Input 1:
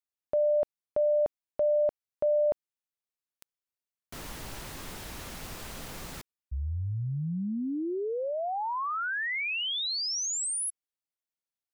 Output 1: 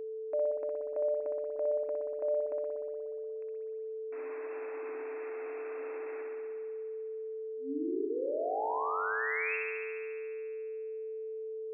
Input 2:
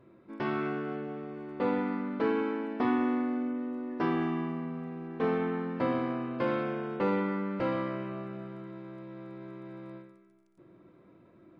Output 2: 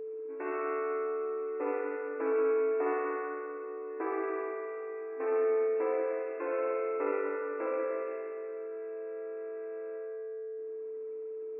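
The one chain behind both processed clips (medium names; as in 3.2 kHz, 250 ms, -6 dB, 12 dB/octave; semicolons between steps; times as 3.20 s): spring tank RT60 2.1 s, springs 59 ms, chirp 35 ms, DRR -1.5 dB; whistle 440 Hz -31 dBFS; FFT band-pass 260–2700 Hz; trim -6 dB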